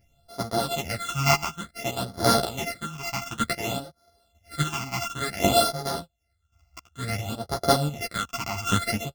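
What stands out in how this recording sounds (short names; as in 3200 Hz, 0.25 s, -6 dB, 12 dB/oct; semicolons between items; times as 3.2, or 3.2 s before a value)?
a buzz of ramps at a fixed pitch in blocks of 64 samples; phasing stages 8, 0.56 Hz, lowest notch 490–2600 Hz; chopped level 0.92 Hz, depth 65%, duty 25%; a shimmering, thickened sound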